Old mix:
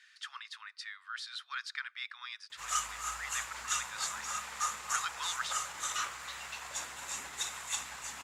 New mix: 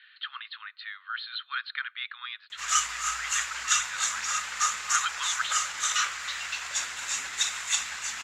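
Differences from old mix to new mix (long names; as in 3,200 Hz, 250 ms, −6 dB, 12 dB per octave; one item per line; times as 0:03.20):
speech: add Chebyshev low-pass with heavy ripple 4,300 Hz, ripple 6 dB
master: add flat-topped bell 3,100 Hz +10.5 dB 2.8 octaves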